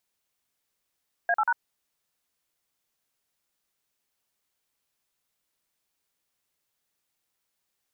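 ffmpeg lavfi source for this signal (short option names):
-f lavfi -i "aevalsrc='0.0708*clip(min(mod(t,0.093),0.051-mod(t,0.093))/0.002,0,1)*(eq(floor(t/0.093),0)*(sin(2*PI*697*mod(t,0.093))+sin(2*PI*1633*mod(t,0.093)))+eq(floor(t/0.093),1)*(sin(2*PI*852*mod(t,0.093))+sin(2*PI*1336*mod(t,0.093)))+eq(floor(t/0.093),2)*(sin(2*PI*941*mod(t,0.093))+sin(2*PI*1477*mod(t,0.093))))':d=0.279:s=44100"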